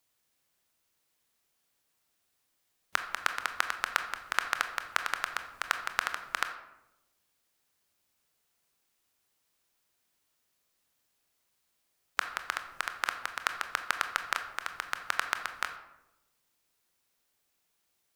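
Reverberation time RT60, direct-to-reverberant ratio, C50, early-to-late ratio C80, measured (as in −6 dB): 0.90 s, 7.0 dB, 9.5 dB, 11.5 dB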